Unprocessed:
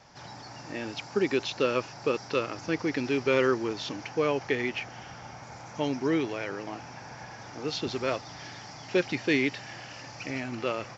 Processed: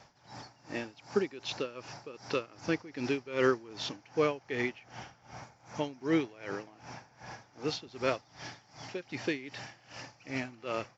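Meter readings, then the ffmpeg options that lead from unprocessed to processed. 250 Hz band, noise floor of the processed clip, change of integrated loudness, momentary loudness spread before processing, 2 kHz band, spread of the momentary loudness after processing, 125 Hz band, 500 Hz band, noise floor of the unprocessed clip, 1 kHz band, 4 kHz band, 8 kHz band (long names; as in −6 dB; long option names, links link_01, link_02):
−5.5 dB, −63 dBFS, −5.0 dB, 17 LU, −6.0 dB, 18 LU, −5.0 dB, −5.0 dB, −45 dBFS, −5.0 dB, −5.0 dB, can't be measured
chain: -af "aeval=exprs='val(0)*pow(10,-20*(0.5-0.5*cos(2*PI*2.6*n/s))/20)':channel_layout=same"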